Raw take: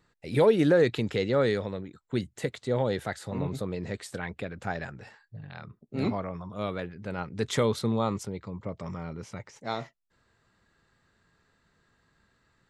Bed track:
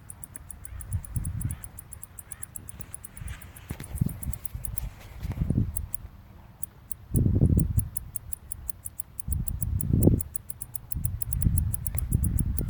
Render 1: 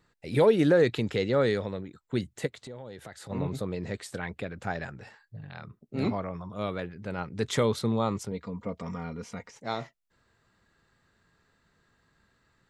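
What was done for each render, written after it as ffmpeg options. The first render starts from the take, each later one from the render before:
-filter_complex "[0:a]asplit=3[s0][s1][s2];[s0]afade=t=out:st=2.46:d=0.02[s3];[s1]acompressor=threshold=0.00891:ratio=4:attack=3.2:release=140:knee=1:detection=peak,afade=t=in:st=2.46:d=0.02,afade=t=out:st=3.29:d=0.02[s4];[s2]afade=t=in:st=3.29:d=0.02[s5];[s3][s4][s5]amix=inputs=3:normalize=0,asettb=1/sr,asplit=3[s6][s7][s8];[s6]atrim=end=8.314[s9];[s7]atrim=start=8.31:end=9.51,asetpts=PTS-STARTPTS,afade=t=in:d=0.004:c=qsin,afade=t=out:st=1.196:d=0.004:c=qsin,aecho=1:1:4.2:0.65,atrim=end_sample=52920[s10];[s8]atrim=start=9.506[s11];[s9][s10]acrossfade=d=0.004:c1=hsin:c2=qsin[s12];[s12][s11]acrossfade=d=0.004:c1=qsin:c2=hsin"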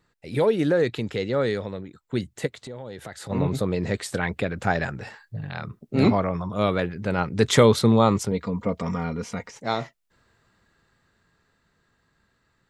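-af "dynaudnorm=f=200:g=31:m=4.47"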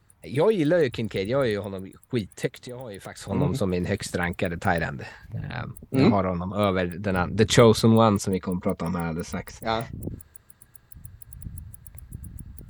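-filter_complex "[1:a]volume=0.2[s0];[0:a][s0]amix=inputs=2:normalize=0"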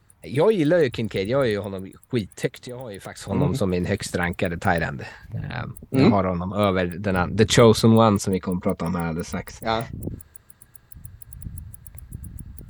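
-af "volume=1.33,alimiter=limit=0.794:level=0:latency=1"

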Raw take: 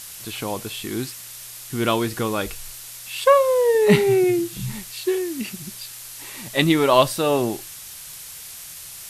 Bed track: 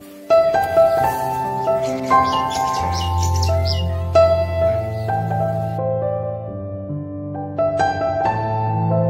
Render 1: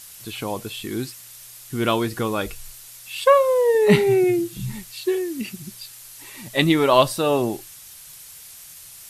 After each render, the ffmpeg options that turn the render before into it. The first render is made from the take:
-af "afftdn=nr=6:nf=-38"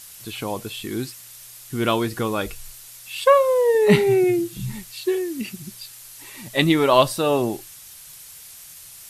-af anull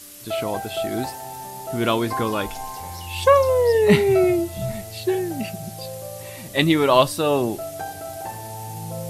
-filter_complex "[1:a]volume=0.2[s0];[0:a][s0]amix=inputs=2:normalize=0"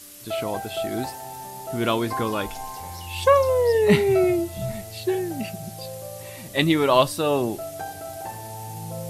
-af "volume=0.794"

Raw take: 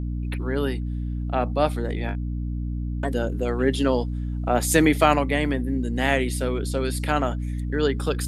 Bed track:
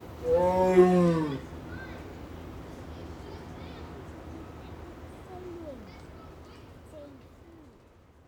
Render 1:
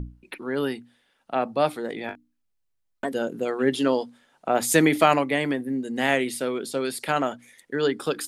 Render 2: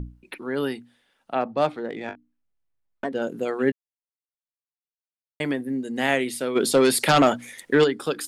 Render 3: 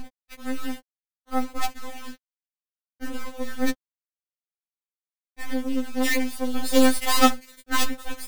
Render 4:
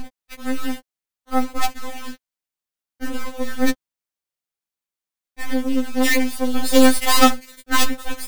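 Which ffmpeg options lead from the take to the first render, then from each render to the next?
-af "bandreject=f=60:t=h:w=6,bandreject=f=120:t=h:w=6,bandreject=f=180:t=h:w=6,bandreject=f=240:t=h:w=6,bandreject=f=300:t=h:w=6"
-filter_complex "[0:a]asettb=1/sr,asplit=3[s0][s1][s2];[s0]atrim=end=1.414[s3];[s1]atrim=start=1.41:end=3.22,asetpts=PTS-STARTPTS,afade=t=in:d=0.004:c=qsin,afade=t=out:st=1.806:d=0.004:c=qsin,adynamicsmooth=sensitivity=2.5:basefreq=3000[s4];[s2]atrim=start=3.216[s5];[s3][s4]acrossfade=d=0.004:c1=hsin:c2=qsin[s6];[s6][s5]acrossfade=d=0.004:c1=qsin:c2=hsin,asplit=3[s7][s8][s9];[s7]afade=t=out:st=6.55:d=0.02[s10];[s8]aeval=exprs='0.316*sin(PI/2*2.24*val(0)/0.316)':c=same,afade=t=in:st=6.55:d=0.02,afade=t=out:st=7.83:d=0.02[s11];[s9]afade=t=in:st=7.83:d=0.02[s12];[s10][s11][s12]amix=inputs=3:normalize=0,asplit=3[s13][s14][s15];[s13]atrim=end=3.72,asetpts=PTS-STARTPTS,afade=t=out:st=3.716:d=0.004:c=hsin[s16];[s14]atrim=start=3.72:end=5.4,asetpts=PTS-STARTPTS,volume=0[s17];[s15]atrim=start=5.4,asetpts=PTS-STARTPTS,afade=t=in:d=0.004:c=hsin[s18];[s16][s17][s18]concat=n=3:v=0:a=1"
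-af "acrusher=bits=3:dc=4:mix=0:aa=0.000001,afftfilt=real='re*3.46*eq(mod(b,12),0)':imag='im*3.46*eq(mod(b,12),0)':win_size=2048:overlap=0.75"
-af "volume=1.88,alimiter=limit=0.794:level=0:latency=1"

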